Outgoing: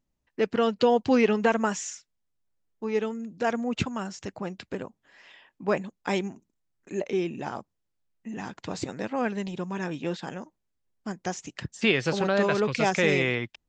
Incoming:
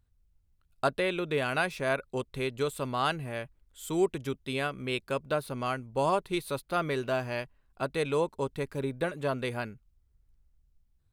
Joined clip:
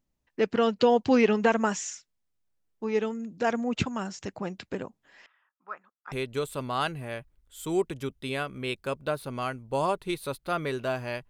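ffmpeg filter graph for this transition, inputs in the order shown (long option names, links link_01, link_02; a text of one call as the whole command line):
ffmpeg -i cue0.wav -i cue1.wav -filter_complex "[0:a]asettb=1/sr,asplit=3[link_01][link_02][link_03];[link_01]atrim=end=5.264[link_04];[link_02]atrim=start=5.26:end=6.12,asetpts=PTS-STARTPTS,afade=type=in:duration=0.004:curve=qsin,afade=type=out:start_time=0.856:duration=0.004:curve=qsin,bandpass=frequency=1300:width_type=q:width=7.7:csg=0[link_05];[link_03]atrim=start=6.116[link_06];[link_04][link_05]acrossfade=duration=0.004:curve1=hsin:curve2=qsin[link_07];[link_07][link_06]acrossfade=duration=0.004:curve1=qsin:curve2=hsin,apad=whole_dur=11.29,atrim=end=11.29,atrim=end=6.122[link_08];[1:a]atrim=start=2.358:end=7.53[link_09];[link_08][link_09]acrossfade=duration=0.004:curve1=hsin:curve2=hsin" out.wav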